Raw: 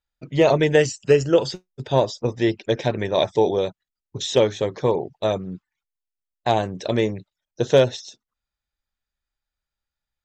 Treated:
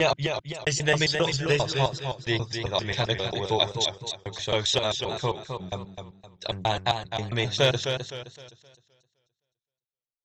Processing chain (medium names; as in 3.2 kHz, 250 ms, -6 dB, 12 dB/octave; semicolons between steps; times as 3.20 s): slices played last to first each 133 ms, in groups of 4; gate -36 dBFS, range -30 dB; graphic EQ 250/500/4000 Hz -11/-8/+5 dB; modulated delay 259 ms, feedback 34%, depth 84 cents, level -7 dB